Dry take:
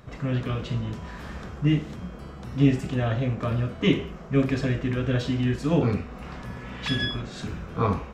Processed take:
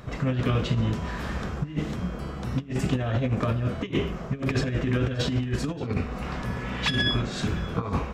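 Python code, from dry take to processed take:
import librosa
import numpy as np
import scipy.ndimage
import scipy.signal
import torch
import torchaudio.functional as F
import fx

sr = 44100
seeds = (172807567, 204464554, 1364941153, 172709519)

p1 = fx.over_compress(x, sr, threshold_db=-27.0, ratio=-0.5)
p2 = p1 + fx.echo_single(p1, sr, ms=578, db=-21.0, dry=0)
y = F.gain(torch.from_numpy(p2), 2.5).numpy()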